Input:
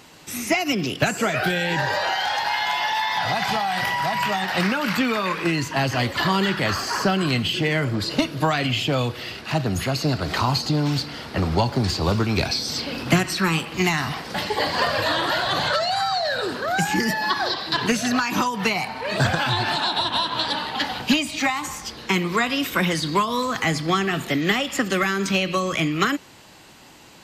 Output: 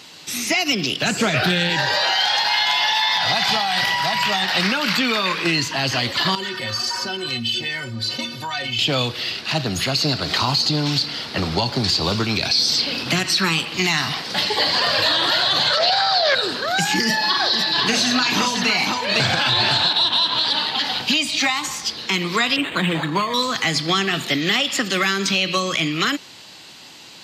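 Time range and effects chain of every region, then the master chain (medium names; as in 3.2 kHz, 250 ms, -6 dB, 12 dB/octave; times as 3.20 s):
1.05–1.70 s: bass shelf 260 Hz +11 dB + loudspeaker Doppler distortion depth 0.19 ms
6.35–8.79 s: inharmonic resonator 110 Hz, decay 0.32 s, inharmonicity 0.03 + level flattener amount 50%
15.77–16.35 s: low-pass 5 kHz + small resonant body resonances 380/540/1600 Hz, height 8 dB, ringing for 20 ms + loudspeaker Doppler distortion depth 0.19 ms
17.02–19.93 s: treble shelf 11 kHz -5.5 dB + multi-tap echo 40/508 ms -7/-5 dB
22.56–23.34 s: band-stop 2.1 kHz + comb 6.4 ms, depth 41% + decimation joined by straight lines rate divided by 8×
whole clip: high-pass 100 Hz; peaking EQ 4.1 kHz +11.5 dB 1.5 oct; peak limiter -8.5 dBFS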